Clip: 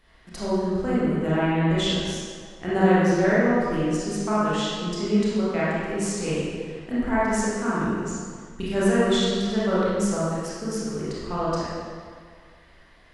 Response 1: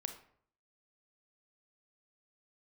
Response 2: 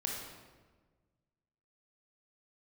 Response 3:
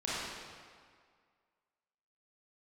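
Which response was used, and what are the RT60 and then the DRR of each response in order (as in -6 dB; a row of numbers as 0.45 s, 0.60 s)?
3; 0.60 s, 1.4 s, 1.9 s; 6.5 dB, -1.5 dB, -9.5 dB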